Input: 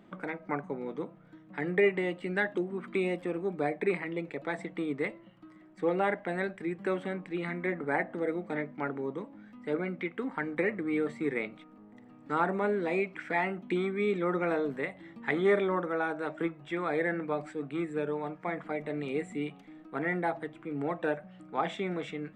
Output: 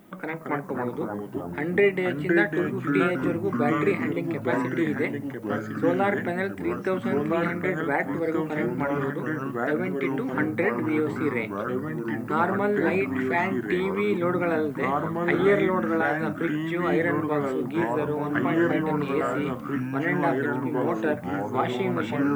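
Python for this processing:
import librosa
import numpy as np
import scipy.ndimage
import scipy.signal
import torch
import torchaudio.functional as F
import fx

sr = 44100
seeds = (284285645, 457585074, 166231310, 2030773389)

y = fx.dmg_noise_colour(x, sr, seeds[0], colour='violet', level_db=-69.0)
y = fx.echo_pitch(y, sr, ms=179, semitones=-3, count=3, db_per_echo=-3.0)
y = y * 10.0 ** (4.5 / 20.0)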